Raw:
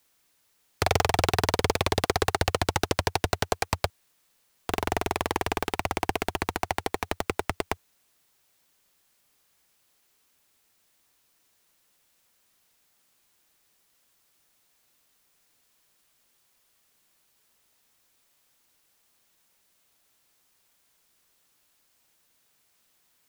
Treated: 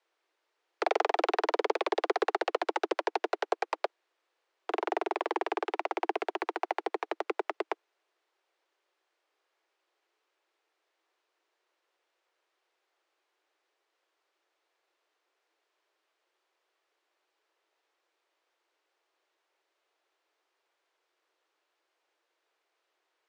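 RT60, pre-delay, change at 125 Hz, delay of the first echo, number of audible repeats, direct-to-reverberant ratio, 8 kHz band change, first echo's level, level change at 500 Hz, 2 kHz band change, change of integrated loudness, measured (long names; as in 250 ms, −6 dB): no reverb audible, no reverb audible, below −40 dB, no echo audible, no echo audible, no reverb audible, below −15 dB, no echo audible, −1.5 dB, −5.5 dB, −4.5 dB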